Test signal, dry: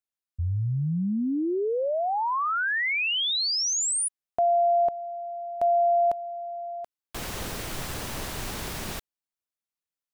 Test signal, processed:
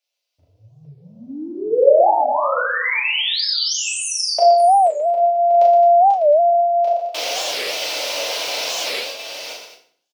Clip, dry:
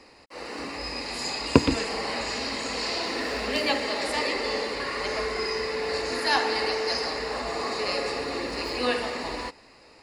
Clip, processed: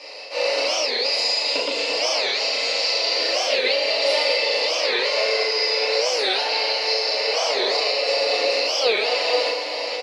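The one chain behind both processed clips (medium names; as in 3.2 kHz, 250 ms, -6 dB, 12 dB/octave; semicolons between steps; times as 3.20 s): chunks repeated in reverse 433 ms, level -11 dB; high-order bell 3.7 kHz +13.5 dB; compression 6:1, threshold -28 dBFS; resonant high-pass 570 Hz, resonance Q 6.4; loudspeakers at several distances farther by 13 m -4 dB, 41 m -7 dB, 74 m -10 dB; FDN reverb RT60 0.54 s, low-frequency decay 1.45×, high-frequency decay 0.85×, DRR -3 dB; warped record 45 rpm, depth 250 cents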